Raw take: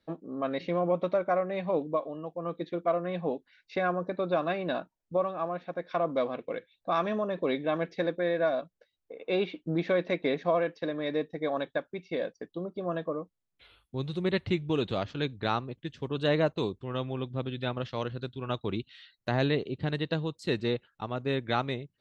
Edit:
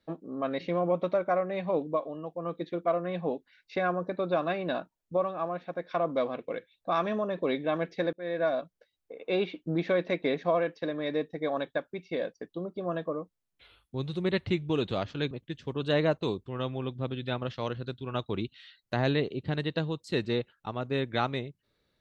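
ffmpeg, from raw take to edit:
-filter_complex "[0:a]asplit=3[a][b][c];[a]atrim=end=8.13,asetpts=PTS-STARTPTS,afade=t=out:st=8.126:d=0.004:c=hsin[d];[b]atrim=start=8.13:end=15.312,asetpts=PTS-STARTPTS,afade=t=in:d=0.42:c=qsin[e];[c]atrim=start=15.658[f];[d][e]concat=n=2:v=0:a=1[g];[g][f]acrossfade=d=0.004:c1=hsin:c2=hsin"

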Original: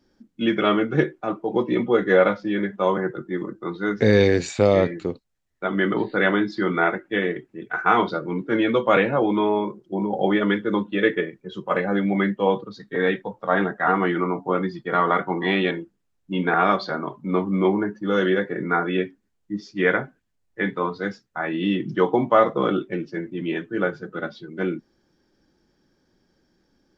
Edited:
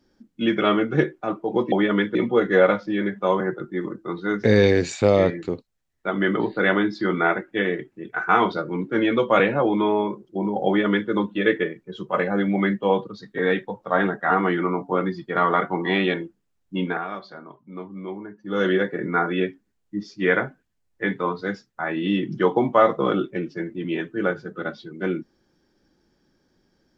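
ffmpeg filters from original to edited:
-filter_complex "[0:a]asplit=5[a][b][c][d][e];[a]atrim=end=1.722[f];[b]atrim=start=10.238:end=10.672[g];[c]atrim=start=1.718:end=16.62,asetpts=PTS-STARTPTS,afade=t=out:st=14.632:d=0.27:silence=0.211349[h];[d]atrim=start=16.62:end=17.95,asetpts=PTS-STARTPTS,volume=-13.5dB[i];[e]atrim=start=17.95,asetpts=PTS-STARTPTS,afade=t=in:d=0.27:silence=0.211349[j];[f][g]acrossfade=d=0.004:c1=hsin:c2=hsin[k];[h][i][j]concat=n=3:v=0:a=1[l];[k][l]acrossfade=d=0.004:c1=hsin:c2=hsin"

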